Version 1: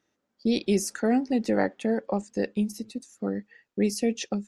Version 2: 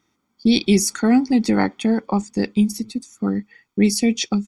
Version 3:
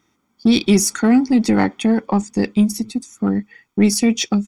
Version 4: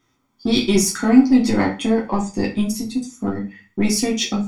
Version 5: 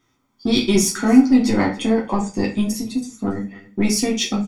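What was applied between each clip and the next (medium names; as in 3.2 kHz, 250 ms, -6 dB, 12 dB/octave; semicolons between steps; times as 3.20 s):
dynamic bell 4.6 kHz, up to +4 dB, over -47 dBFS, Q 0.73; comb 0.9 ms, depth 67%; trim +6.5 dB
peaking EQ 4.4 kHz -4.5 dB 0.32 oct; in parallel at -4 dB: saturation -19 dBFS, distortion -9 dB
reverberation RT60 0.30 s, pre-delay 3 ms, DRR -3 dB; trim -5 dB
delay 282 ms -21 dB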